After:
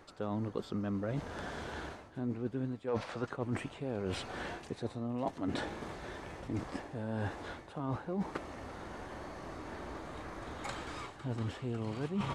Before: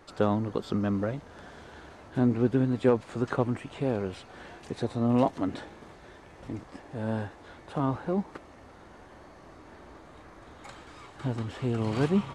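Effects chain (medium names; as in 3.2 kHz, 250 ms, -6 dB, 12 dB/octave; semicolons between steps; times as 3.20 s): time-frequency box 2.87–3.26 s, 460–6300 Hz +8 dB; reverse; compression 12:1, threshold -38 dBFS, peak gain reduction 26 dB; reverse; trim +5.5 dB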